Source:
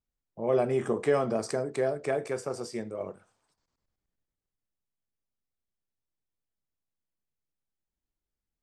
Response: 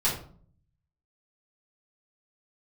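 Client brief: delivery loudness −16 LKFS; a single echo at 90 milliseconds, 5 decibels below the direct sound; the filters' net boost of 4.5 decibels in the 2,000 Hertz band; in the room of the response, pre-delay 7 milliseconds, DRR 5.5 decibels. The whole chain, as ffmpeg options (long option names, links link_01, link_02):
-filter_complex "[0:a]equalizer=frequency=2000:width_type=o:gain=5.5,aecho=1:1:90:0.562,asplit=2[link_01][link_02];[1:a]atrim=start_sample=2205,adelay=7[link_03];[link_02][link_03]afir=irnorm=-1:irlink=0,volume=-16dB[link_04];[link_01][link_04]amix=inputs=2:normalize=0,volume=11dB"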